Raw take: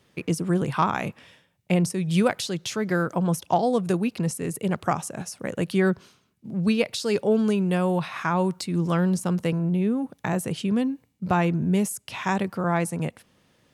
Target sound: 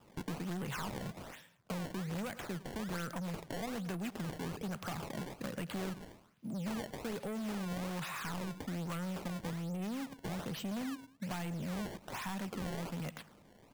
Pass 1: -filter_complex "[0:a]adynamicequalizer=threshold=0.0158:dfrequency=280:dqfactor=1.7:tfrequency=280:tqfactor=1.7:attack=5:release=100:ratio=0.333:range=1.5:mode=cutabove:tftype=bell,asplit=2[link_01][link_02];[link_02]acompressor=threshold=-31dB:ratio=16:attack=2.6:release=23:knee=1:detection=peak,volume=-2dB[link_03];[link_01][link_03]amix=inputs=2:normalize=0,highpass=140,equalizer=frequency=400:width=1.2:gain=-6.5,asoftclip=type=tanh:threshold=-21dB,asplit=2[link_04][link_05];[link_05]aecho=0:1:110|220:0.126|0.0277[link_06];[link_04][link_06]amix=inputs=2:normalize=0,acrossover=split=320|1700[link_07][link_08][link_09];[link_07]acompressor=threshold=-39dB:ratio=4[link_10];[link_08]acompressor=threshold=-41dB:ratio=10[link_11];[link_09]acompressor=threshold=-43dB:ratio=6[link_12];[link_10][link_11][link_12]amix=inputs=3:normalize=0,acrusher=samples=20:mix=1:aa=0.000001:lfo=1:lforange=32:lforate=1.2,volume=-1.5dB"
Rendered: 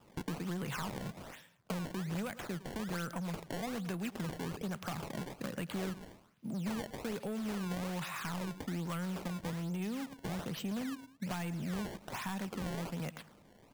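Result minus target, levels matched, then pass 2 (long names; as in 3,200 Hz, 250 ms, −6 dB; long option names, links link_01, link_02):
downward compressor: peak gain reduction −6.5 dB; soft clipping: distortion −5 dB
-filter_complex "[0:a]adynamicequalizer=threshold=0.0158:dfrequency=280:dqfactor=1.7:tfrequency=280:tqfactor=1.7:attack=5:release=100:ratio=0.333:range=1.5:mode=cutabove:tftype=bell,asplit=2[link_01][link_02];[link_02]acompressor=threshold=-38dB:ratio=16:attack=2.6:release=23:knee=1:detection=peak,volume=-2dB[link_03];[link_01][link_03]amix=inputs=2:normalize=0,highpass=140,equalizer=frequency=400:width=1.2:gain=-6.5,asoftclip=type=tanh:threshold=-28.5dB,asplit=2[link_04][link_05];[link_05]aecho=0:1:110|220:0.126|0.0277[link_06];[link_04][link_06]amix=inputs=2:normalize=0,acrossover=split=320|1700[link_07][link_08][link_09];[link_07]acompressor=threshold=-39dB:ratio=4[link_10];[link_08]acompressor=threshold=-41dB:ratio=10[link_11];[link_09]acompressor=threshold=-43dB:ratio=6[link_12];[link_10][link_11][link_12]amix=inputs=3:normalize=0,acrusher=samples=20:mix=1:aa=0.000001:lfo=1:lforange=32:lforate=1.2,volume=-1.5dB"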